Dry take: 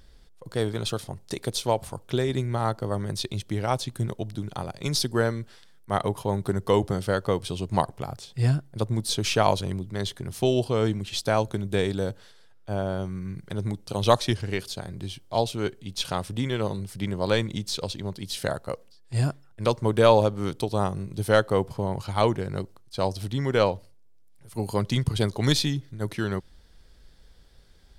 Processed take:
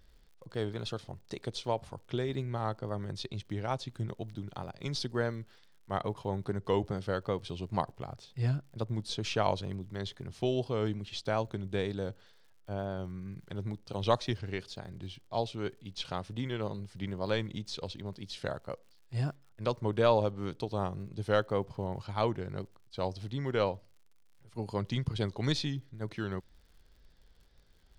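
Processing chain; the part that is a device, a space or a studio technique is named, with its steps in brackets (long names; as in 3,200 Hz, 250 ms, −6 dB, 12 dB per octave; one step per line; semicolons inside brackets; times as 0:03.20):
lo-fi chain (low-pass filter 5,100 Hz 12 dB per octave; tape wow and flutter; surface crackle 85 per second −46 dBFS)
level −8 dB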